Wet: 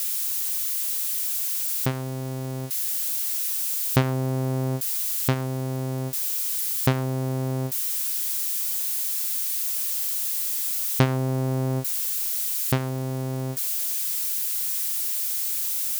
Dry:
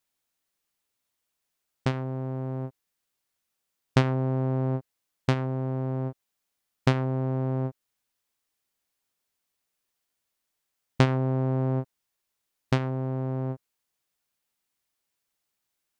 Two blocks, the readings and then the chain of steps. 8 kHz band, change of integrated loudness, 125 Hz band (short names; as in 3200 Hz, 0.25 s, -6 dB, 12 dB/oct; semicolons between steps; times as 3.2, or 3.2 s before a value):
n/a, +4.5 dB, +1.0 dB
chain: switching spikes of -24 dBFS; gain +1 dB